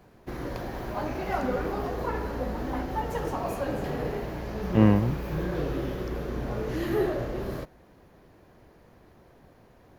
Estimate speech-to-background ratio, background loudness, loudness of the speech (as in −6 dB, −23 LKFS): 8.0 dB, −31.5 LKFS, −23.5 LKFS